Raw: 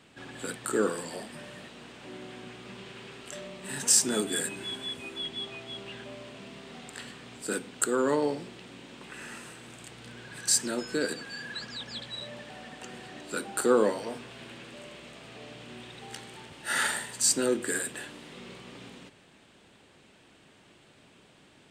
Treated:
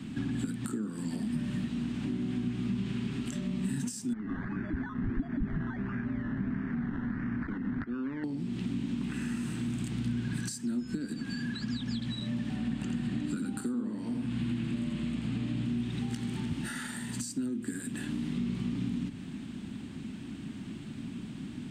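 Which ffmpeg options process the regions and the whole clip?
ffmpeg -i in.wav -filter_complex "[0:a]asettb=1/sr,asplit=3[link_01][link_02][link_03];[link_01]atrim=end=4.134[link_04];[link_02]atrim=start=4.13:end=8.24,asetpts=PTS-STARTPTS,afade=type=in:duration=0.004:curve=qsin,afade=type=out:start_time=4.106:duration=0.004:curve=qsin,acompressor=threshold=-41dB:ratio=3:attack=3.2:release=140:knee=1:detection=peak,acrusher=samples=15:mix=1:aa=0.000001:lfo=1:lforange=9:lforate=1.5,lowpass=frequency=1700:width_type=q:width=4.2[link_05];[link_03]atrim=start=8.236[link_06];[link_04][link_05]acrossfade=duration=0.004:curve1=hsin:curve2=qsin[link_07];[link_07][link_06]acrossfade=duration=0.004:curve1=qsin:curve2=hsin,asettb=1/sr,asplit=3[link_08][link_09][link_10];[link_08]atrim=end=12.564[link_11];[link_09]atrim=start=12.56:end=15.66,asetpts=PTS-STARTPTS,afade=type=in:duration=0.004:curve=qsin,afade=type=out:start_time=3.096:duration=0.004:curve=qsin,lowpass=12000,equalizer=frequency=5800:width_type=o:width=0.38:gain=-5.5,aecho=1:1:85:0.668,atrim=end_sample=136710[link_12];[link_10]atrim=start=15.656[link_13];[link_11][link_12]acrossfade=duration=0.004:curve1=hsin:curve2=qsin[link_14];[link_14][link_13]acrossfade=duration=0.004:curve1=qsin:curve2=hsin,acompressor=threshold=-42dB:ratio=8,lowshelf=frequency=350:width_type=q:width=3:gain=12.5,acrossover=split=130[link_15][link_16];[link_16]acompressor=threshold=-40dB:ratio=2.5[link_17];[link_15][link_17]amix=inputs=2:normalize=0,volume=5.5dB" out.wav

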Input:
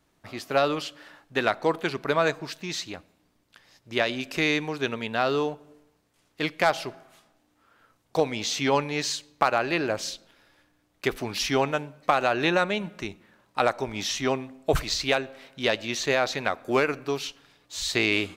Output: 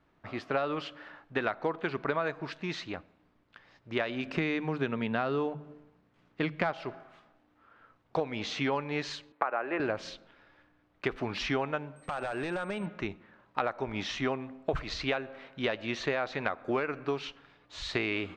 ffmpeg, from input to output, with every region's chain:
ffmpeg -i in.wav -filter_complex "[0:a]asettb=1/sr,asplit=3[link_01][link_02][link_03];[link_01]atrim=end=4.234[link_04];[link_02]atrim=start=4.23:end=6.73,asetpts=PTS-STARTPTS,afade=type=in:duration=0.004:curve=qsin,afade=type=out:start_time=2.496:duration=0.004:curve=qsin,equalizer=frequency=170:width=0.97:gain=8,bandreject=frequency=50:width_type=h:width=6,bandreject=frequency=100:width_type=h:width=6,bandreject=frequency=150:width_type=h:width=6[link_05];[link_03]atrim=start=6.726[link_06];[link_04][link_05]acrossfade=duration=0.004:curve1=hsin:curve2=qsin[link_07];[link_07][link_06]acrossfade=duration=0.004:curve1=qsin:curve2=hsin,asettb=1/sr,asplit=3[link_08][link_09][link_10];[link_08]atrim=end=9.324[link_11];[link_09]atrim=start=9.32:end=9.8,asetpts=PTS-STARTPTS,afade=type=in:duration=0.004:curve=qsin,afade=type=out:start_time=0.476:duration=0.004:curve=qsin,acrossover=split=3000[link_12][link_13];[link_13]acompressor=threshold=-46dB:ratio=4:attack=1:release=60[link_14];[link_12][link_14]amix=inputs=2:normalize=0,acrossover=split=260 2900:gain=0.0794 1 0.0631[link_15][link_16][link_17];[link_15][link_16][link_17]amix=inputs=3:normalize=0[link_18];[link_10]atrim=start=9.796[link_19];[link_11][link_18]acrossfade=duration=0.004:curve1=hsin:curve2=qsin[link_20];[link_20][link_19]acrossfade=duration=0.004:curve1=qsin:curve2=hsin,asettb=1/sr,asplit=3[link_21][link_22][link_23];[link_21]atrim=end=11.964[link_24];[link_22]atrim=start=11.96:end=12.86,asetpts=PTS-STARTPTS,afade=type=in:duration=0.004:curve=qsin,afade=type=out:start_time=0.896:duration=0.004:curve=qsin,acompressor=threshold=-30dB:ratio=4:attack=3.2:release=140:knee=1:detection=peak,aeval=exprs='val(0)+0.01*sin(2*PI*8300*n/s)':channel_layout=same,aeval=exprs='0.0473*(abs(mod(val(0)/0.0473+3,4)-2)-1)':channel_layout=same[link_25];[link_23]atrim=start=12.856[link_26];[link_24][link_25]acrossfade=duration=0.004:curve1=hsin:curve2=qsin[link_27];[link_27][link_26]acrossfade=duration=0.004:curve1=qsin:curve2=hsin,lowpass=2600,equalizer=frequency=1300:width_type=o:width=0.77:gain=2.5,acompressor=threshold=-27dB:ratio=5" out.wav

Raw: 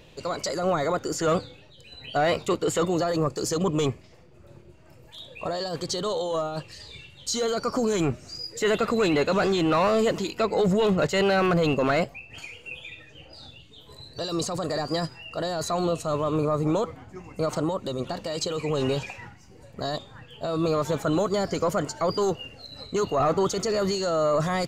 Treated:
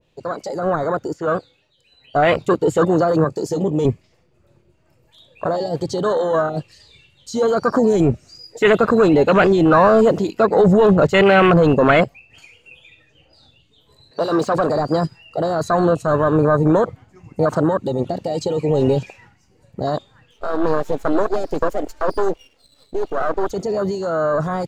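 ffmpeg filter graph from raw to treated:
ffmpeg -i in.wav -filter_complex "[0:a]asettb=1/sr,asplit=3[link_01][link_02][link_03];[link_01]atrim=end=1.134[link_04];[link_02]atrim=start=1.13:end=2.15,asetpts=PTS-STARTPTS,afade=type=in:duration=0.004:curve=qsin,afade=type=out:start_time=1.016:duration=0.004:curve=qsin,acrossover=split=3300[link_05][link_06];[link_06]acompressor=threshold=-45dB:ratio=4:attack=1:release=60[link_07];[link_05][link_07]amix=inputs=2:normalize=0,lowshelf=frequency=320:gain=-7[link_08];[link_03]atrim=start=2.146[link_09];[link_04][link_08]acrossfade=duration=0.004:curve1=hsin:curve2=qsin[link_10];[link_10][link_09]acrossfade=duration=0.004:curve1=qsin:curve2=hsin,asettb=1/sr,asplit=3[link_11][link_12][link_13];[link_11]atrim=end=3.244[link_14];[link_12]atrim=start=3.24:end=3.85,asetpts=PTS-STARTPTS,afade=type=in:duration=0.004:curve=qsin,afade=type=out:start_time=0.606:duration=0.004:curve=qsin,highpass=130,asplit=2[link_15][link_16];[link_16]adelay=20,volume=-11dB[link_17];[link_15][link_17]amix=inputs=2:normalize=0,atrim=end_sample=26901,acompressor=threshold=-31dB:ratio=1.5:attack=3.2:release=140:knee=1:detection=peak[link_18];[link_13]atrim=start=3.846[link_19];[link_14][link_18]acrossfade=duration=0.004:curve1=hsin:curve2=qsin[link_20];[link_20][link_19]acrossfade=duration=0.004:curve1=qsin:curve2=hsin,asettb=1/sr,asplit=3[link_21][link_22][link_23];[link_21]atrim=end=14.114[link_24];[link_22]atrim=start=14.11:end=14.7,asetpts=PTS-STARTPTS,afade=type=in:duration=0.004:curve=qsin,afade=type=out:start_time=0.586:duration=0.004:curve=qsin,highpass=frequency=110:width=0.5412,highpass=frequency=110:width=1.3066,asplit=2[link_25][link_26];[link_26]highpass=frequency=720:poles=1,volume=17dB,asoftclip=type=tanh:threshold=-18dB[link_27];[link_25][link_27]amix=inputs=2:normalize=0,lowpass=frequency=2200:poles=1,volume=-6dB[link_28];[link_23]atrim=start=14.696[link_29];[link_24][link_28]acrossfade=duration=0.004:curve1=hsin:curve2=qsin[link_30];[link_30][link_29]acrossfade=duration=0.004:curve1=qsin:curve2=hsin,asettb=1/sr,asplit=3[link_31][link_32][link_33];[link_31]atrim=end=20.314[link_34];[link_32]atrim=start=20.31:end=23.51,asetpts=PTS-STARTPTS,afade=type=in:duration=0.004:curve=qsin,afade=type=out:start_time=3.196:duration=0.004:curve=qsin,lowshelf=frequency=200:width_type=q:width=1.5:gain=-13,aeval=exprs='max(val(0),0)':channel_layout=same[link_35];[link_33]atrim=start=23.506[link_36];[link_34][link_35]acrossfade=duration=0.004:curve1=hsin:curve2=qsin[link_37];[link_37][link_36]acrossfade=duration=0.004:curve1=qsin:curve2=hsin,afwtdn=0.0447,dynaudnorm=framelen=140:gausssize=31:maxgain=5dB,adynamicequalizer=threshold=0.0178:dfrequency=1500:dqfactor=0.7:tfrequency=1500:tqfactor=0.7:attack=5:release=100:ratio=0.375:range=2:mode=boostabove:tftype=highshelf,volume=4.5dB" out.wav

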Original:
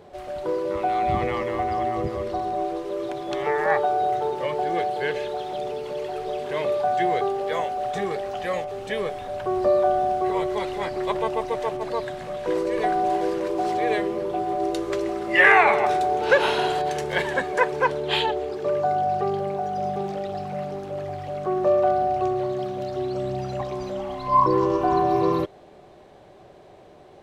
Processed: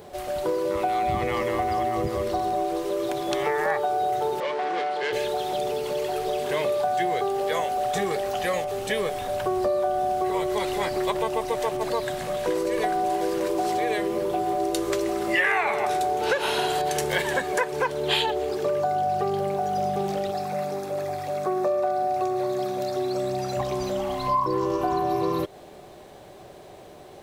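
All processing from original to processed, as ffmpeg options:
ffmpeg -i in.wav -filter_complex "[0:a]asettb=1/sr,asplit=3[link_01][link_02][link_03];[link_01]atrim=end=4.404[link_04];[link_02]atrim=start=4.4:end=5.13,asetpts=PTS-STARTPTS,afade=type=in:duration=0.004:curve=qsin,afade=type=out:start_time=0.726:duration=0.004:curve=qsin,aeval=exprs='(tanh(17.8*val(0)+0.4)-tanh(0.4))/17.8':channel_layout=same,highpass=300,lowpass=4800[link_05];[link_03]atrim=start=5.126[link_06];[link_04][link_05]acrossfade=duration=0.004:curve1=hsin:curve2=qsin[link_07];[link_07][link_06]acrossfade=duration=0.004:curve1=qsin:curve2=hsin,asettb=1/sr,asplit=3[link_08][link_09][link_10];[link_08]atrim=end=20.314[link_11];[link_09]atrim=start=20.31:end=23.57,asetpts=PTS-STARTPTS,afade=type=in:duration=0.004:curve=qsin,afade=type=out:start_time=3.256:duration=0.004:curve=qsin,highpass=frequency=240:poles=1,bandreject=frequency=3000:width=5.4[link_12];[link_10]atrim=start=23.566[link_13];[link_11][link_12]acrossfade=duration=0.004:curve1=hsin:curve2=qsin[link_14];[link_14][link_13]acrossfade=duration=0.004:curve1=qsin:curve2=hsin,acompressor=threshold=-25dB:ratio=5,aemphasis=mode=production:type=50fm,volume=3.5dB" out.wav

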